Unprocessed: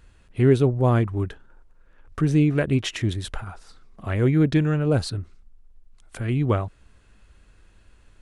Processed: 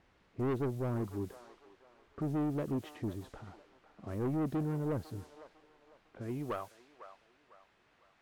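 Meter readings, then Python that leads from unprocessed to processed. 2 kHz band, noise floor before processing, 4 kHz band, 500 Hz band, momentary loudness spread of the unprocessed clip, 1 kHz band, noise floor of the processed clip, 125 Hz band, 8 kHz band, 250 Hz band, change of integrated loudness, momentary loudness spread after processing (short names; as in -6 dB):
-18.5 dB, -55 dBFS, -23.0 dB, -13.5 dB, 17 LU, -11.0 dB, -70 dBFS, -17.0 dB, under -15 dB, -13.0 dB, -14.5 dB, 21 LU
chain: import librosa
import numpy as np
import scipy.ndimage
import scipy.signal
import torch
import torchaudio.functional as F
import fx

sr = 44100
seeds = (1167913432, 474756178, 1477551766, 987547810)

y = fx.filter_sweep_bandpass(x, sr, from_hz=310.0, to_hz=3200.0, start_s=6.14, end_s=6.95, q=0.87)
y = fx.dmg_noise_colour(y, sr, seeds[0], colour='white', level_db=-55.0)
y = 10.0 ** (-23.0 / 20.0) * np.tanh(y / 10.0 ** (-23.0 / 20.0))
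y = fx.echo_wet_bandpass(y, sr, ms=501, feedback_pct=36, hz=1100.0, wet_db=-12)
y = fx.env_lowpass(y, sr, base_hz=1700.0, full_db=-30.0)
y = y * 10.0 ** (-6.5 / 20.0)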